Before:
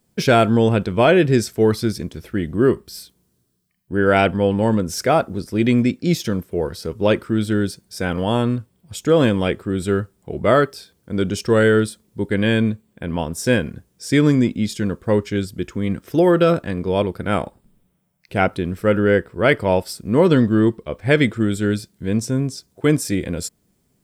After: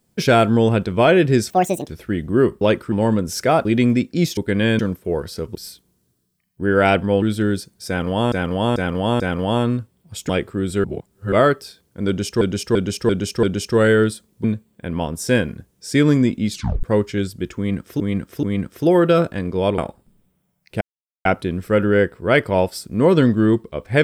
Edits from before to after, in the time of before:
0:01.50–0:02.12: play speed 167%
0:02.86–0:04.53: swap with 0:07.02–0:07.33
0:05.26–0:05.54: remove
0:07.99–0:08.43: repeat, 4 plays
0:09.08–0:09.41: remove
0:09.96–0:10.44: reverse
0:11.19–0:11.53: repeat, 5 plays
0:12.20–0:12.62: move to 0:06.26
0:14.70: tape stop 0.31 s
0:15.75–0:16.18: repeat, 3 plays
0:17.10–0:17.36: remove
0:18.39: splice in silence 0.44 s

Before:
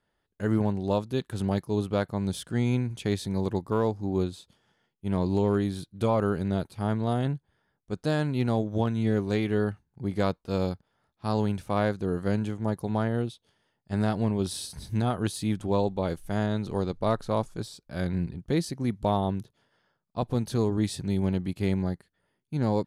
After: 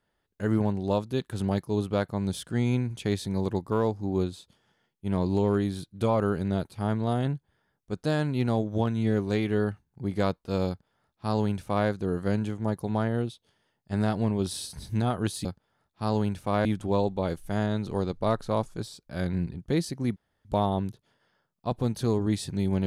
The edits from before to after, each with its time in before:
0:10.68–0:11.88: duplicate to 0:15.45
0:18.96: splice in room tone 0.29 s

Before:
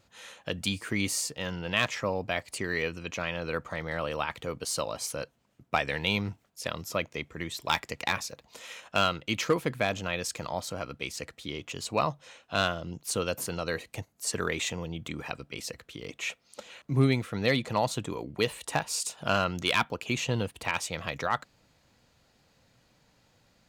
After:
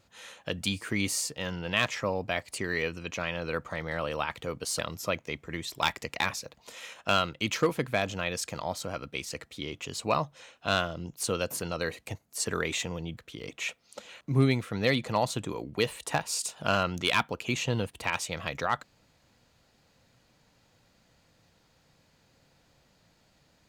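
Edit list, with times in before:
0:04.79–0:06.66: remove
0:15.04–0:15.78: remove

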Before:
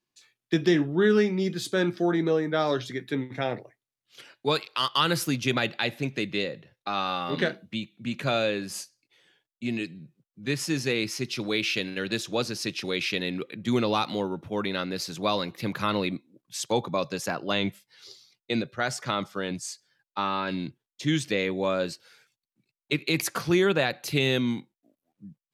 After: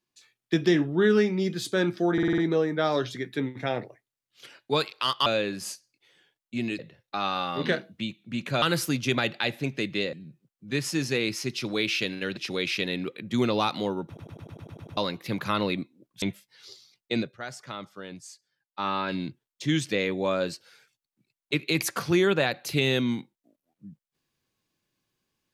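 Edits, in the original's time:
0:02.13: stutter 0.05 s, 6 plays
0:05.01–0:06.52: swap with 0:08.35–0:09.88
0:12.12–0:12.71: remove
0:14.41: stutter in place 0.10 s, 9 plays
0:16.56–0:17.61: remove
0:18.59–0:20.27: duck −9.5 dB, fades 0.17 s

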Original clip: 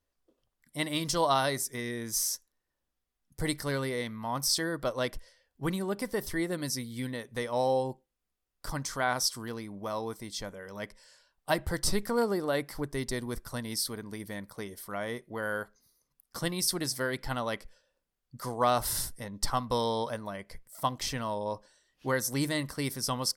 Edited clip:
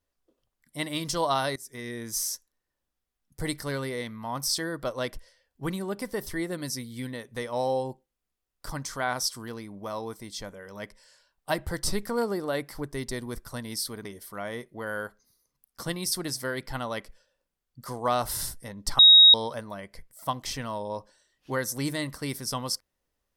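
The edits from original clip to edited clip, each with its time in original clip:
0:01.56–0:02.04: fade in equal-power, from −20 dB
0:14.05–0:14.61: remove
0:19.55–0:19.90: beep over 3,780 Hz −10 dBFS

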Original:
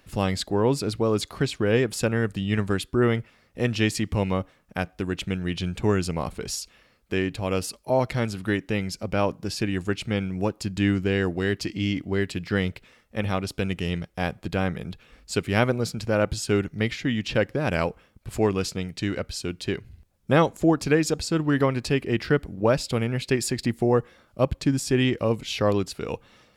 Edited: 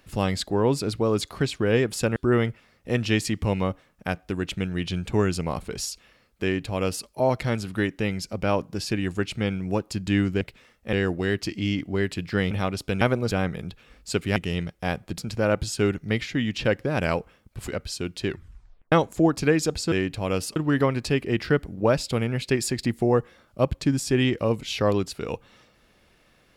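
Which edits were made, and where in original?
0:02.16–0:02.86: remove
0:07.13–0:07.77: duplicate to 0:21.36
0:12.69–0:13.21: move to 0:11.11
0:13.71–0:14.53: swap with 0:15.58–0:15.88
0:18.38–0:19.12: remove
0:19.72: tape stop 0.64 s

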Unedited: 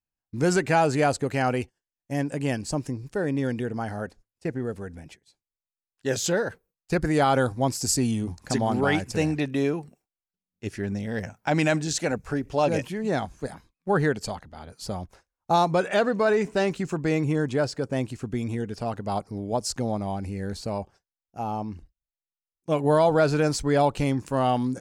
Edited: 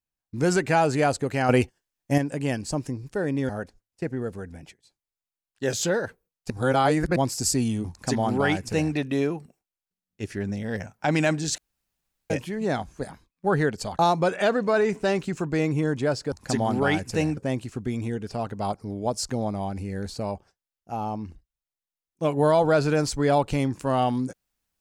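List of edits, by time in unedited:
0:01.49–0:02.18: clip gain +7.5 dB
0:03.49–0:03.92: remove
0:06.93–0:07.59: reverse
0:08.33–0:09.38: duplicate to 0:17.84
0:12.01–0:12.73: fill with room tone
0:14.42–0:15.51: remove

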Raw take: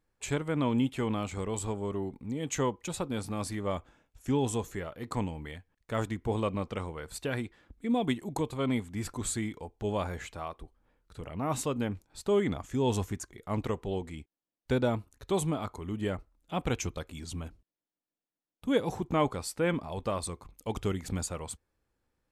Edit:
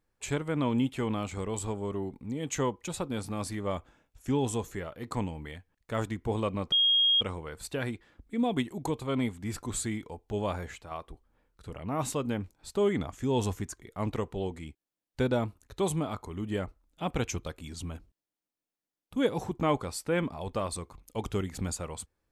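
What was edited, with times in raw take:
0:06.72: insert tone 3,260 Hz −20.5 dBFS 0.49 s
0:10.08–0:10.42: fade out, to −6 dB

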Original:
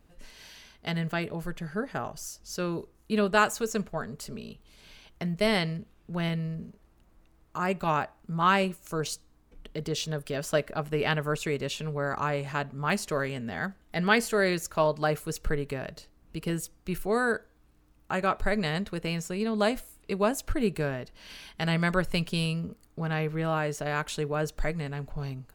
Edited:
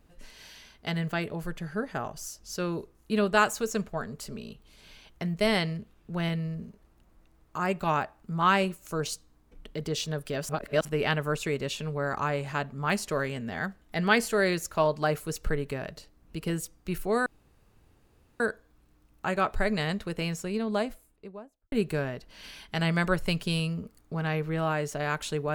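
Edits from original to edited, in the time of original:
0:10.49–0:10.85: reverse
0:17.26: splice in room tone 1.14 s
0:19.17–0:20.58: fade out and dull

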